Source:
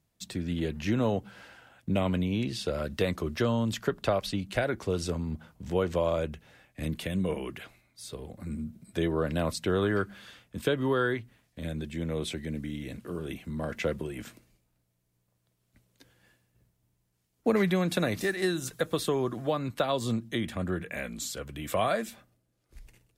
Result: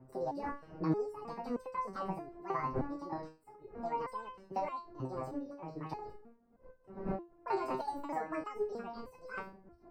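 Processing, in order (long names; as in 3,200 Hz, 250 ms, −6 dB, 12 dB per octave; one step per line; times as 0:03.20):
pitch shifter swept by a sawtooth −5.5 semitones, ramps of 1,074 ms
wind on the microphone 190 Hz −41 dBFS
wrong playback speed 33 rpm record played at 78 rpm
moving average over 13 samples
step-sequenced resonator 3.2 Hz 130–510 Hz
level +6.5 dB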